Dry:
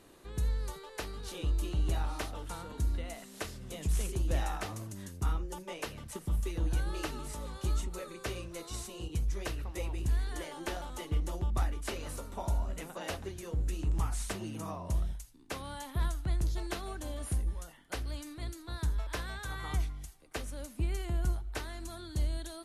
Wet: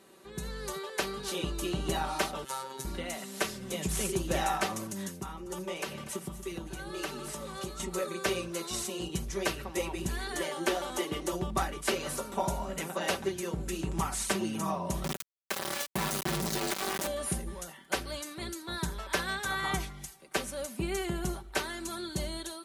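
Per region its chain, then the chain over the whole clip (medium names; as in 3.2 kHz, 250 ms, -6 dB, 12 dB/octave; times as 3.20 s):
2.44–2.85 s: tone controls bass -14 dB, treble +2 dB + robot voice 133 Hz
5.13–7.80 s: compression 2:1, threshold -43 dBFS + delay 241 ms -14.5 dB
10.68–11.33 s: resonant low shelf 220 Hz -7 dB, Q 1.5 + three bands compressed up and down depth 70%
15.04–17.07 s: compression 8:1, threshold -36 dBFS + word length cut 6-bit, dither none
whole clip: Bessel high-pass 160 Hz, order 2; comb 5.2 ms, depth 61%; level rider gain up to 7 dB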